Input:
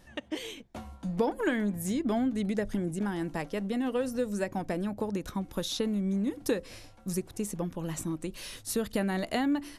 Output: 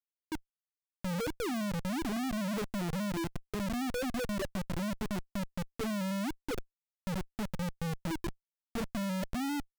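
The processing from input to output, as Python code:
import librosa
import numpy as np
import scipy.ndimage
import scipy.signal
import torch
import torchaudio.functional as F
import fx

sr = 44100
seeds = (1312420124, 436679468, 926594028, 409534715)

y = fx.wiener(x, sr, points=25)
y = fx.spec_topn(y, sr, count=2)
y = fx.schmitt(y, sr, flips_db=-35.5)
y = y * librosa.db_to_amplitude(1.5)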